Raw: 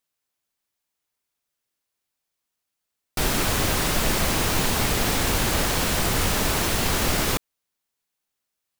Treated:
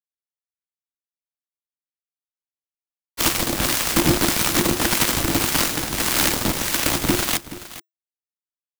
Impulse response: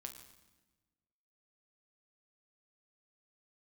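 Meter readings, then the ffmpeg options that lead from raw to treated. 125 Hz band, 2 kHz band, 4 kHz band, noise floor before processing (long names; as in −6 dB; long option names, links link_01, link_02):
−1.0 dB, +2.0 dB, +3.0 dB, −82 dBFS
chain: -filter_complex "[0:a]agate=range=-33dB:threshold=-19dB:ratio=3:detection=peak,aeval=exprs='0.299*(cos(1*acos(clip(val(0)/0.299,-1,1)))-cos(1*PI/2))+0.0841*(cos(7*acos(clip(val(0)/0.299,-1,1)))-cos(7*PI/2))':channel_layout=same,acrossover=split=1100[link_01][link_02];[link_01]aeval=exprs='val(0)*(1-0.5/2+0.5/2*cos(2*PI*1.7*n/s))':channel_layout=same[link_03];[link_02]aeval=exprs='val(0)*(1-0.5/2-0.5/2*cos(2*PI*1.7*n/s))':channel_layout=same[link_04];[link_03][link_04]amix=inputs=2:normalize=0,afreqshift=-360,asplit=2[link_05][link_06];[link_06]aecho=0:1:426:0.168[link_07];[link_05][link_07]amix=inputs=2:normalize=0,volume=8dB"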